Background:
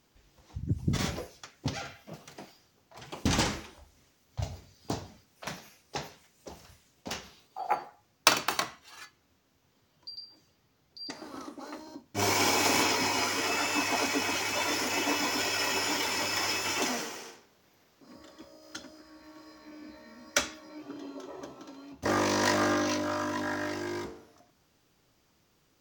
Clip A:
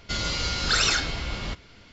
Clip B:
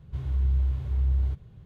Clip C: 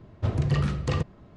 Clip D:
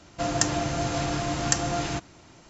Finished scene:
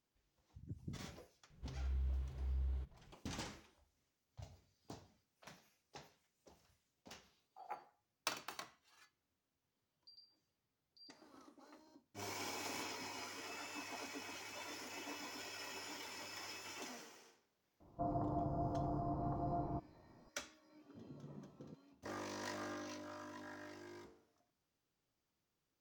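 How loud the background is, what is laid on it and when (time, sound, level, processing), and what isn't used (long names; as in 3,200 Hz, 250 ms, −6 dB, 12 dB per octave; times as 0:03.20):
background −19.5 dB
0:01.50: mix in B −10.5 dB + parametric band 96 Hz −14.5 dB
0:17.80: mix in D −11.5 dB + Butterworth low-pass 1,100 Hz 48 dB per octave
0:20.72: mix in C −14 dB + four-pole ladder band-pass 280 Hz, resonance 50%
not used: A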